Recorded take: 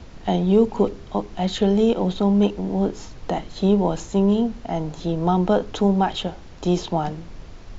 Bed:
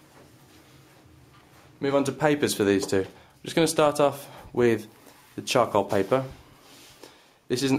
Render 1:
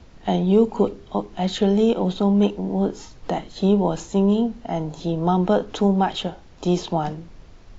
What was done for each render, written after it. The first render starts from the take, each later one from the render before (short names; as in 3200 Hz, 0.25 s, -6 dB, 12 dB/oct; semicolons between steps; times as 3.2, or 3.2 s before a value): noise print and reduce 6 dB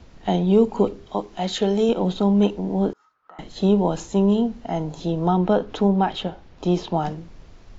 1.06–1.89 tone controls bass -6 dB, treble +3 dB; 2.93–3.39 band-pass 1300 Hz, Q 11; 5.28–6.94 air absorption 100 m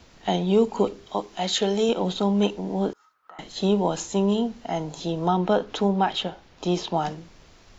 tilt +2 dB/oct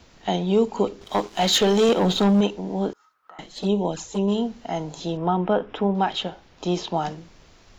1.01–2.41 sample leveller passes 2; 3.46–4.28 envelope flanger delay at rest 6.6 ms, full sweep at -17.5 dBFS; 5.17–5.95 polynomial smoothing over 25 samples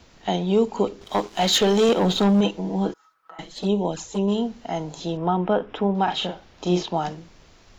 2.44–3.54 comb 6.1 ms; 6.04–6.83 doubler 39 ms -3.5 dB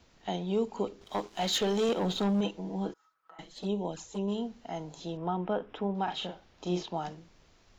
gain -10 dB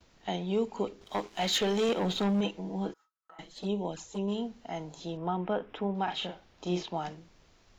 gate with hold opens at -54 dBFS; dynamic EQ 2200 Hz, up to +5 dB, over -53 dBFS, Q 1.8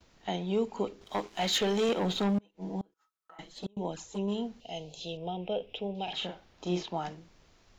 2.38–3.77 flipped gate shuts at -25 dBFS, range -32 dB; 4.6–6.13 EQ curve 110 Hz 0 dB, 300 Hz -9 dB, 490 Hz +2 dB, 740 Hz -3 dB, 1100 Hz -19 dB, 1800 Hz -17 dB, 2700 Hz +9 dB, 7600 Hz 0 dB